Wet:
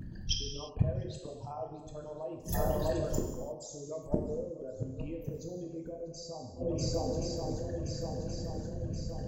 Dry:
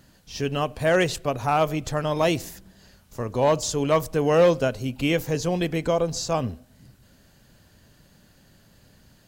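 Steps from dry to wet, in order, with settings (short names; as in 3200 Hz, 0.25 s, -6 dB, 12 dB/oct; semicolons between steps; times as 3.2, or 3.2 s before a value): formant sharpening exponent 3; compressor 2:1, threshold -35 dBFS, peak gain reduction 11.5 dB; on a send: swung echo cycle 1.075 s, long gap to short 1.5:1, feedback 49%, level -21 dB; on the sum: flipped gate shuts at -30 dBFS, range -28 dB; non-linear reverb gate 0.38 s falling, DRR 0.5 dB; in parallel at -0.5 dB: vocal rider within 3 dB 2 s; on the sum: gain +8 dB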